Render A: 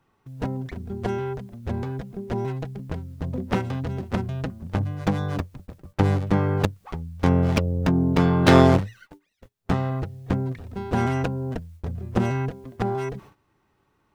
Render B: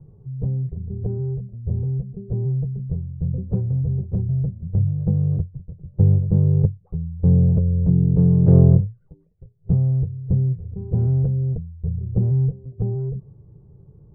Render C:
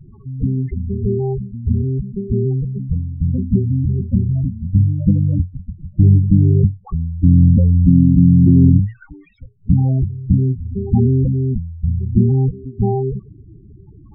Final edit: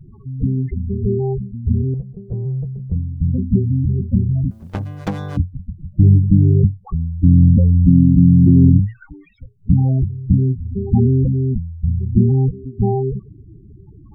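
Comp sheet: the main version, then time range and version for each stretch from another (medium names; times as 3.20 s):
C
1.94–2.92 s: from B
4.51–5.37 s: from A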